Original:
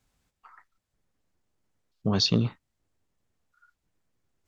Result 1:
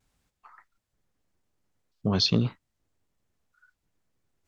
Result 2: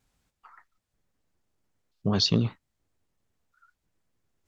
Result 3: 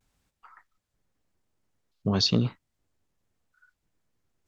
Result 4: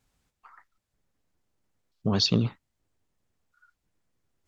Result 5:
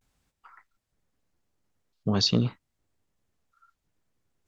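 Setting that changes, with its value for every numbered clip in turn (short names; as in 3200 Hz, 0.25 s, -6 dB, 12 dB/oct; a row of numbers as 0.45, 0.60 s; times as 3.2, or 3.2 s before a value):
vibrato, rate: 1.7, 7.6, 0.9, 13, 0.48 Hz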